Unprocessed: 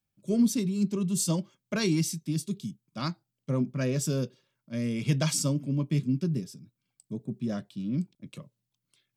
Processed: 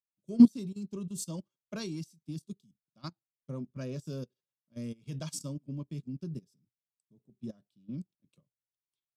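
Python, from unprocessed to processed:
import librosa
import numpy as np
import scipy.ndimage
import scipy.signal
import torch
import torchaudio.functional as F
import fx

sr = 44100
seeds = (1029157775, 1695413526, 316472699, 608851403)

y = fx.peak_eq(x, sr, hz=2000.0, db=-7.5, octaves=0.69)
y = fx.level_steps(y, sr, step_db=10)
y = fx.upward_expand(y, sr, threshold_db=-40.0, expansion=2.5)
y = y * 10.0 ** (8.5 / 20.0)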